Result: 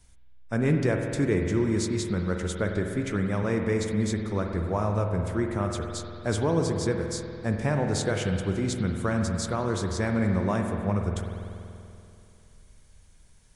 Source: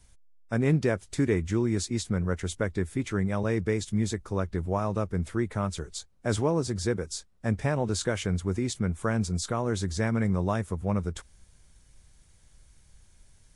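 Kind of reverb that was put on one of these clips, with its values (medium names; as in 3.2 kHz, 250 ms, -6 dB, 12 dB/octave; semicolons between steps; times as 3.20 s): spring tank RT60 2.7 s, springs 48 ms, chirp 50 ms, DRR 3 dB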